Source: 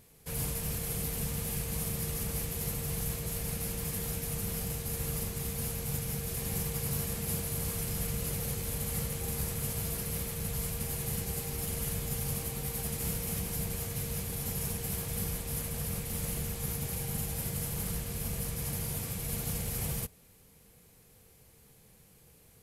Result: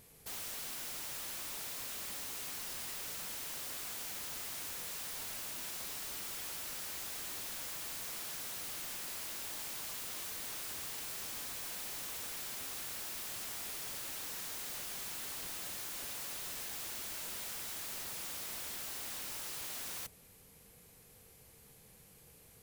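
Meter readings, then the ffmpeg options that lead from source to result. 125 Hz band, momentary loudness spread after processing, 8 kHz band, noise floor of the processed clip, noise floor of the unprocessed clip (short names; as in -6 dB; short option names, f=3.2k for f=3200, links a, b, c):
-26.0 dB, 7 LU, -5.5 dB, -60 dBFS, -60 dBFS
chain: -af "lowshelf=f=370:g=-4.5,aeval=exprs='(mod(89.1*val(0)+1,2)-1)/89.1':c=same,volume=1dB"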